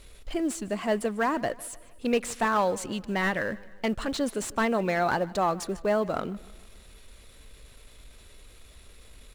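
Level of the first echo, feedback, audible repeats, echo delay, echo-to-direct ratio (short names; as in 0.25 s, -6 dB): -21.5 dB, 51%, 3, 0.153 s, -20.0 dB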